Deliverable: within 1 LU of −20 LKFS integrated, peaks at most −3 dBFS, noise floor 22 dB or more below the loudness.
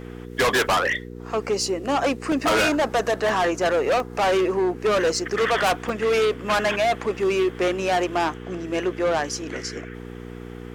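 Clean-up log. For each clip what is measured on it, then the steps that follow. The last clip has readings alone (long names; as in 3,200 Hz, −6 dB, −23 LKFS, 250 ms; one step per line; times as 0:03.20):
number of dropouts 4; longest dropout 1.7 ms; mains hum 60 Hz; hum harmonics up to 480 Hz; level of the hum −34 dBFS; integrated loudness −22.5 LKFS; sample peak −13.0 dBFS; target loudness −20.0 LKFS
→ repair the gap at 0:02.32/0:03.29/0:04.00/0:05.89, 1.7 ms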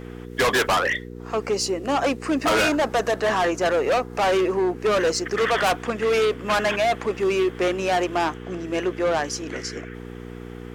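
number of dropouts 0; mains hum 60 Hz; hum harmonics up to 480 Hz; level of the hum −34 dBFS
→ hum removal 60 Hz, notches 8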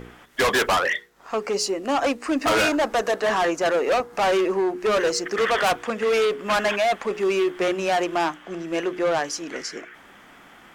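mains hum none found; integrated loudness −23.0 LKFS; sample peak −13.5 dBFS; target loudness −20.0 LKFS
→ level +3 dB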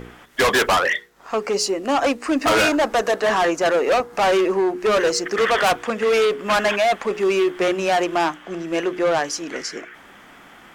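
integrated loudness −20.0 LKFS; sample peak −10.5 dBFS; background noise floor −46 dBFS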